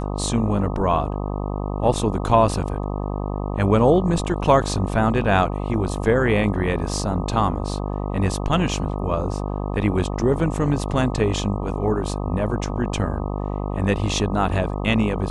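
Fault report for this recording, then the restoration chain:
buzz 50 Hz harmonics 25 -26 dBFS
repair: de-hum 50 Hz, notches 25

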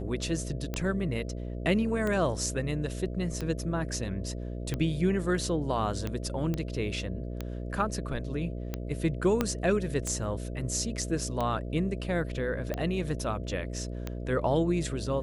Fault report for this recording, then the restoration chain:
buzz 60 Hz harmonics 11 -36 dBFS
tick 45 rpm -18 dBFS
6.54 s: pop -19 dBFS
9.41 s: pop -12 dBFS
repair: de-click; de-hum 60 Hz, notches 11

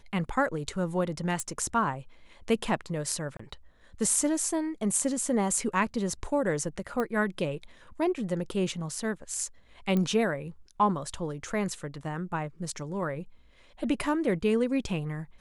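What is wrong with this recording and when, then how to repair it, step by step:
1.40 s: pop -18 dBFS
3.37–3.39 s: dropout 24 ms
7.00 s: pop -18 dBFS
9.97 s: pop -17 dBFS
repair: de-click; interpolate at 3.37 s, 24 ms

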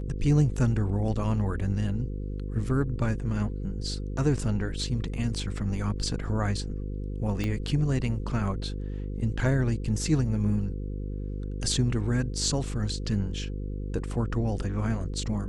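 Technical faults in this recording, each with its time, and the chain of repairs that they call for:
buzz 50 Hz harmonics 10 -33 dBFS
7.44 s: pop -18 dBFS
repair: de-click; de-hum 50 Hz, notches 10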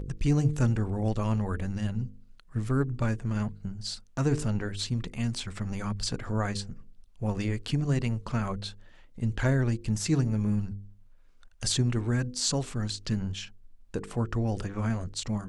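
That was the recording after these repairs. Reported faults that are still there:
7.44 s: pop

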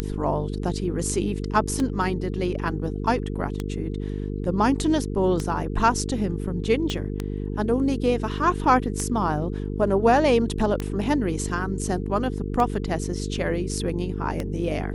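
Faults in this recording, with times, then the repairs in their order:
buzz 50 Hz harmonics 9 -29 dBFS
tick 33 1/3 rpm -13 dBFS
6.90 s: pop -14 dBFS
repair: de-click; de-hum 50 Hz, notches 9

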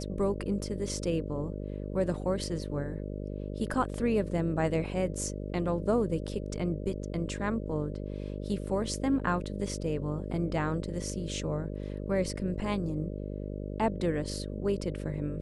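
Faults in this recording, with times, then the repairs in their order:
buzz 50 Hz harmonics 12 -37 dBFS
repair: de-hum 50 Hz, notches 12

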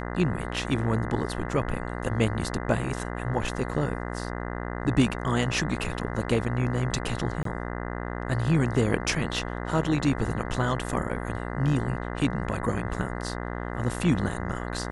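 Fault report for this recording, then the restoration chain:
buzz 60 Hz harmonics 34 -33 dBFS
7.43–7.45 s: dropout 23 ms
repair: de-hum 60 Hz, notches 34; interpolate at 7.43 s, 23 ms

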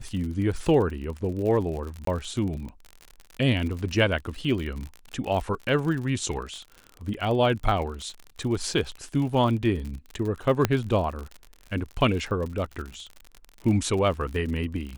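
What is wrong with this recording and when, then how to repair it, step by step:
crackle 58 per s -32 dBFS
2.05–2.07 s: dropout 23 ms
10.65 s: pop -7 dBFS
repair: de-click; interpolate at 2.05 s, 23 ms

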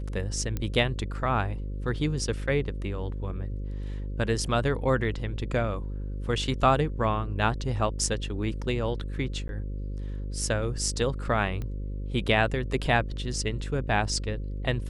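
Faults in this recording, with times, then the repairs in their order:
buzz 50 Hz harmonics 11 -33 dBFS
0.57 s: pop -17 dBFS
9.48–9.49 s: dropout 11 ms
11.62 s: pop -23 dBFS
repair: de-click; de-hum 50 Hz, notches 11; interpolate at 9.48 s, 11 ms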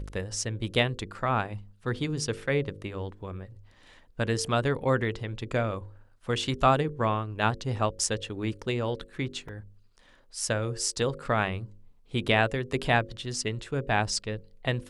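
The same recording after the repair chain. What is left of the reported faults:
nothing left

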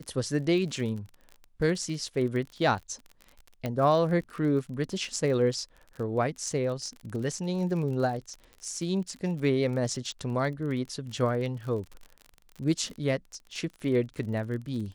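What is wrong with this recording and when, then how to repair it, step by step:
crackle 41 per s -36 dBFS
3.66 s: pop -18 dBFS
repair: de-click

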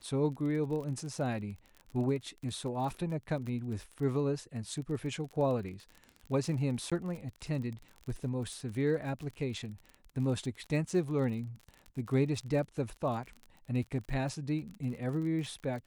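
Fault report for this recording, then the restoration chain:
crackle 39 per s -39 dBFS
6.90–6.92 s: dropout 16 ms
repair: de-click; interpolate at 6.90 s, 16 ms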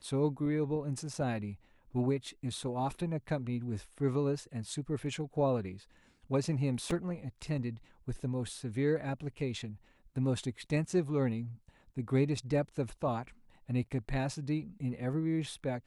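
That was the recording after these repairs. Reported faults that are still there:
nothing left

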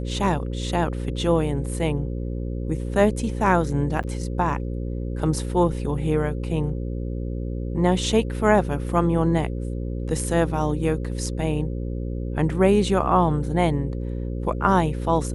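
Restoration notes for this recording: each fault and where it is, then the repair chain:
buzz 60 Hz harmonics 9 -28 dBFS
4.03–4.04 s: dropout 7.8 ms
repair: de-hum 60 Hz, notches 9; interpolate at 4.03 s, 7.8 ms

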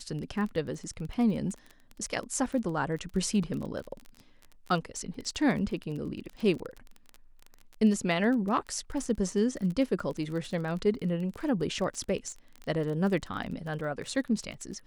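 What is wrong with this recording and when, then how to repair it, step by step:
crackle 25 per s -35 dBFS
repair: de-click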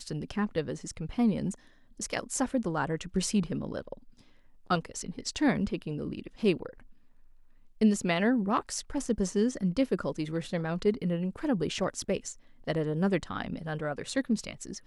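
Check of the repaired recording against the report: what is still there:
nothing left

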